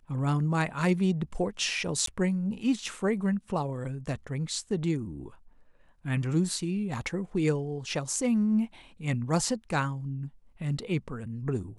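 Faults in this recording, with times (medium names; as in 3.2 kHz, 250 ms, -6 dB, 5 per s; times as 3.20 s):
2.06–2.07 s: dropout 13 ms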